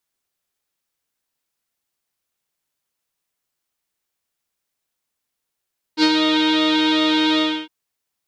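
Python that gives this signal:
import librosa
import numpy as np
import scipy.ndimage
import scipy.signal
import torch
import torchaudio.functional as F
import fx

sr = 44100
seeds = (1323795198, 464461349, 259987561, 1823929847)

y = fx.sub_patch_pwm(sr, seeds[0], note=63, wave2='saw', interval_st=7, detune_cents=16, level2_db=-9.0, sub_db=-30, noise_db=-30.0, kind='lowpass', cutoff_hz=3200.0, q=5.8, env_oct=0.5, env_decay_s=0.27, env_sustain_pct=40, attack_ms=60.0, decay_s=0.06, sustain_db=-4.5, release_s=0.29, note_s=1.42, lfo_hz=2.6, width_pct=46, width_swing_pct=8)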